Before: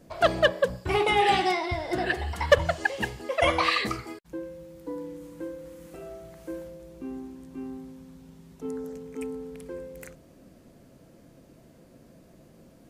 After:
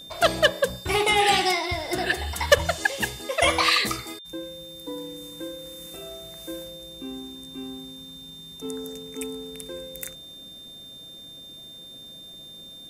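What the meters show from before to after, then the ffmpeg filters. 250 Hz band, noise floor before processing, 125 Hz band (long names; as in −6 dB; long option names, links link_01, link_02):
0.0 dB, −55 dBFS, 0.0 dB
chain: -af "crystalizer=i=3.5:c=0,aeval=exprs='val(0)+0.00891*sin(2*PI*3600*n/s)':channel_layout=same"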